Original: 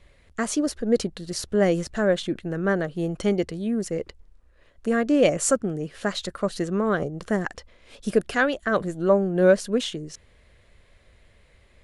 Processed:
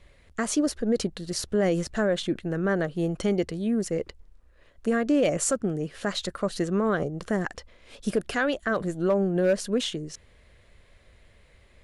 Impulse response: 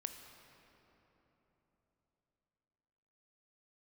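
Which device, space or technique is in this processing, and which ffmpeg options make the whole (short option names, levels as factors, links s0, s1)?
clipper into limiter: -af "asoftclip=type=hard:threshold=0.316,alimiter=limit=0.168:level=0:latency=1:release=65"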